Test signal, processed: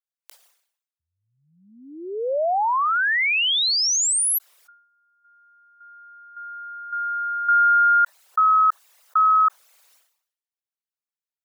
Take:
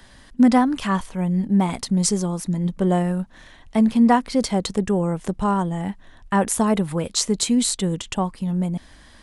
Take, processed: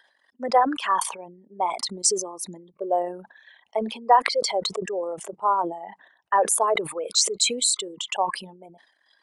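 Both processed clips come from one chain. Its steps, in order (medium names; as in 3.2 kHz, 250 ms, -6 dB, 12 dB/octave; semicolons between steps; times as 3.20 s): resonances exaggerated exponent 2; high-pass 520 Hz 24 dB/octave; spectral noise reduction 9 dB; decay stretcher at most 86 dB/s; trim +1.5 dB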